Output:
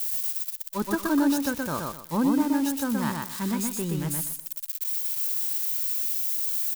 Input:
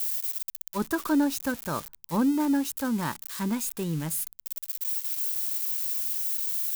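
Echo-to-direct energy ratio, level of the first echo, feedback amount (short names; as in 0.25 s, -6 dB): -2.5 dB, -3.0 dB, 25%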